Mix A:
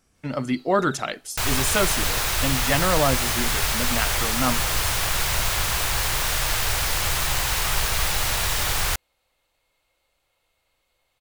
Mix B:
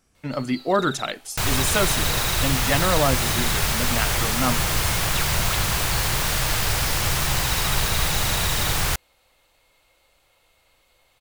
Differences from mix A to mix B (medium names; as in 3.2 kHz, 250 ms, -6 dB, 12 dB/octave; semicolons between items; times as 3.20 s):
first sound +9.5 dB; second sound: add peaking EQ 180 Hz +8.5 dB 2 oct